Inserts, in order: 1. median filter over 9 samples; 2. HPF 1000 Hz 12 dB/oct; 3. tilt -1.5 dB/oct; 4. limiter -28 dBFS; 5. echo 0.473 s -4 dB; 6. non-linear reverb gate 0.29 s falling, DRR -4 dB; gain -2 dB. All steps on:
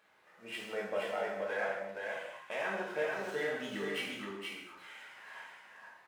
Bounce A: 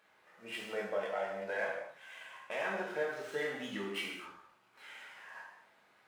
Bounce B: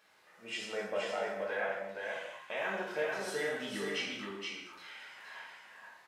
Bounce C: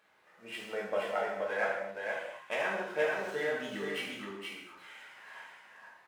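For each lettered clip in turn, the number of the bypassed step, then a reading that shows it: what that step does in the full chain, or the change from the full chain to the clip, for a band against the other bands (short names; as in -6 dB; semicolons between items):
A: 5, echo-to-direct 6.0 dB to 4.0 dB; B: 1, 8 kHz band +5.5 dB; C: 4, crest factor change +2.0 dB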